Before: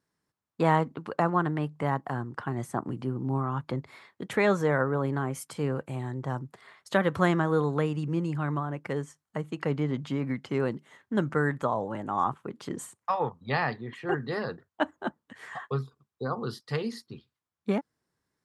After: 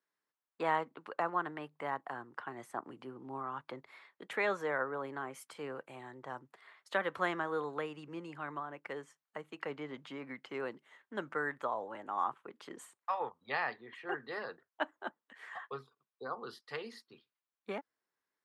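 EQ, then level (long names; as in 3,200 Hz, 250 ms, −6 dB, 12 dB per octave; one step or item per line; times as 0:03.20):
three-way crossover with the lows and the highs turned down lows −13 dB, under 270 Hz, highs −14 dB, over 3,400 Hz
spectral tilt +2.5 dB per octave
−6.5 dB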